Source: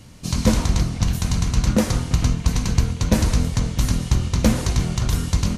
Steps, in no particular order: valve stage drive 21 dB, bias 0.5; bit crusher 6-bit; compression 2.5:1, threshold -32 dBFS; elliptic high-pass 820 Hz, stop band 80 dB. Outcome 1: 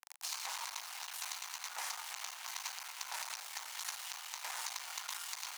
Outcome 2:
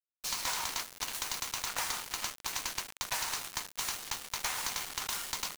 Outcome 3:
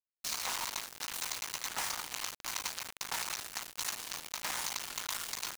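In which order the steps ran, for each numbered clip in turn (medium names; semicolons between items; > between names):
bit crusher > valve stage > compression > elliptic high-pass; elliptic high-pass > valve stage > compression > bit crusher; valve stage > elliptic high-pass > compression > bit crusher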